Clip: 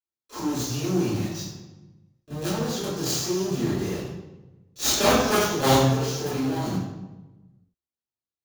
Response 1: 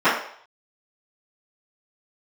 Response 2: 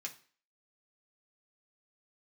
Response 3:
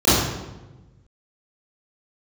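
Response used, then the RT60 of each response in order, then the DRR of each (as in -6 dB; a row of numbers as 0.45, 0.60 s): 3; 0.60, 0.40, 1.1 s; -17.0, -0.5, -15.5 dB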